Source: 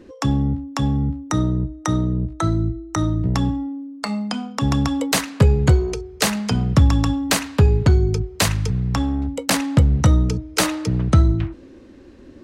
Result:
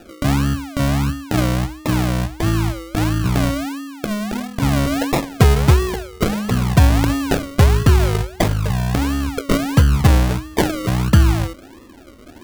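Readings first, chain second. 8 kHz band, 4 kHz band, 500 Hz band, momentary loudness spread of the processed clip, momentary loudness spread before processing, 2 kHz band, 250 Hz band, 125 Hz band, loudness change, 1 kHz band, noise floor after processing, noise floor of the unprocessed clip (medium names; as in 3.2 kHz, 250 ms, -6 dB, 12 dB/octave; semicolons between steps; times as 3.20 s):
-2.5 dB, 0.0 dB, +3.5 dB, 8 LU, 8 LU, +3.0 dB, +1.5 dB, +2.0 dB, +2.0 dB, +3.5 dB, -42 dBFS, -44 dBFS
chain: decimation with a swept rate 41×, swing 60% 1.5 Hz; trim +2 dB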